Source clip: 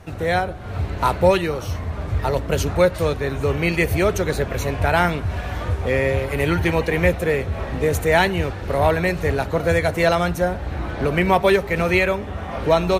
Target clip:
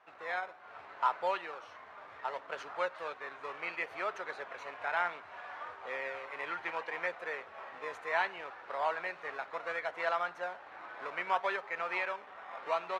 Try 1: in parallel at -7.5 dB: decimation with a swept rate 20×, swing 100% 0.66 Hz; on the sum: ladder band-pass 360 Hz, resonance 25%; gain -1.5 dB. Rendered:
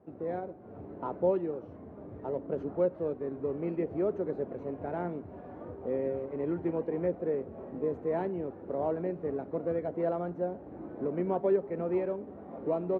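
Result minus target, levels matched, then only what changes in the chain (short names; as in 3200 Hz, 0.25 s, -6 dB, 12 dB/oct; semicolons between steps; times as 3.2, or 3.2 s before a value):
1000 Hz band -9.5 dB
change: ladder band-pass 1400 Hz, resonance 25%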